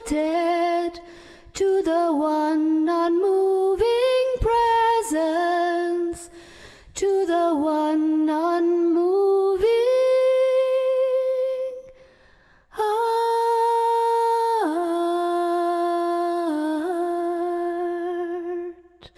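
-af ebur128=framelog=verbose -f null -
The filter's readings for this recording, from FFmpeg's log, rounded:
Integrated loudness:
  I:         -21.7 LUFS
  Threshold: -32.2 LUFS
Loudness range:
  LRA:         3.7 LU
  Threshold: -41.8 LUFS
  LRA low:   -23.7 LUFS
  LRA high:  -20.0 LUFS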